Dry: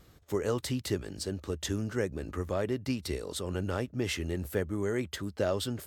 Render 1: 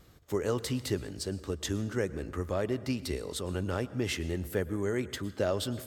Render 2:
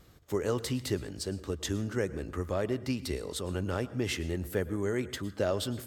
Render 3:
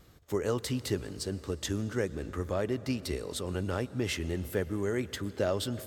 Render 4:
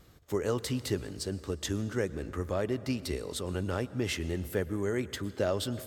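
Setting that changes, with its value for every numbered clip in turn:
plate-style reverb, RT60: 1.1, 0.54, 5.3, 2.5 s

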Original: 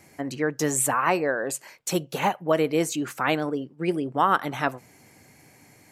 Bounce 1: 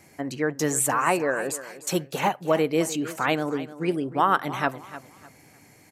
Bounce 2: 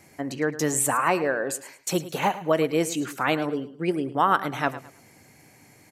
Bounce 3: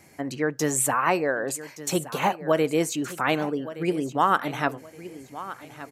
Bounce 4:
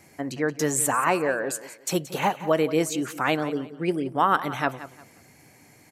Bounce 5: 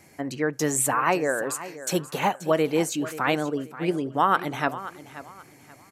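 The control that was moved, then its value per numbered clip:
feedback echo, time: 0.302, 0.107, 1.17, 0.176, 0.531 s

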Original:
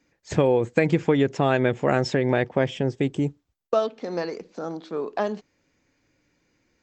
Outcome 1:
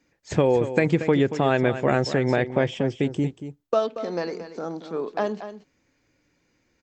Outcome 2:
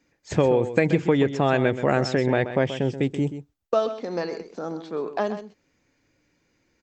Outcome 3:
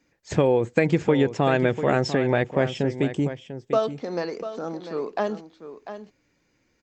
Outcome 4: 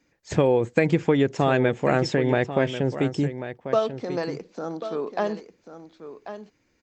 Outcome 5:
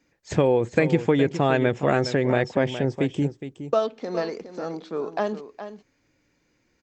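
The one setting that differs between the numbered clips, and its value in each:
echo, time: 0.232, 0.13, 0.695, 1.09, 0.415 s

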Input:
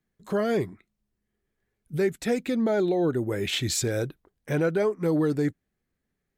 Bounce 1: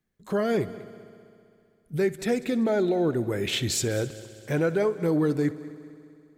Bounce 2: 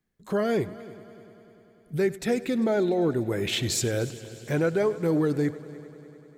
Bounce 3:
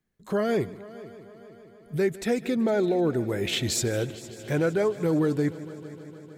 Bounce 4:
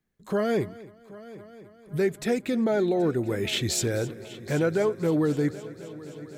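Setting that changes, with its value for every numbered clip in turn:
multi-head echo, time: 65, 99, 153, 259 ms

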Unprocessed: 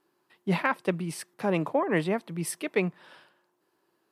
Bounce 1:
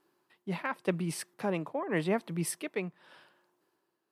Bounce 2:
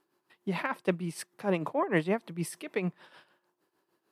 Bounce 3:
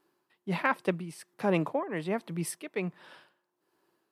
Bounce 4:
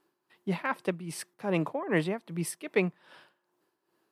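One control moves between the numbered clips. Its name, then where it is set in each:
tremolo, rate: 0.87, 6.6, 1.3, 2.5 Hz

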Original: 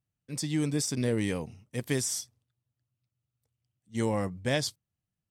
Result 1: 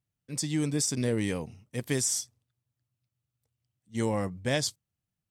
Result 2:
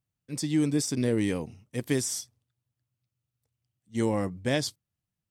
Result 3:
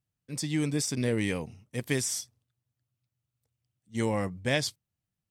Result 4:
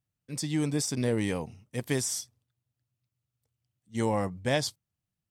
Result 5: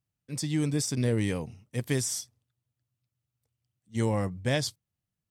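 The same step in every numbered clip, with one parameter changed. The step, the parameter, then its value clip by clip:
dynamic EQ, frequency: 7200, 310, 2300, 830, 110 Hz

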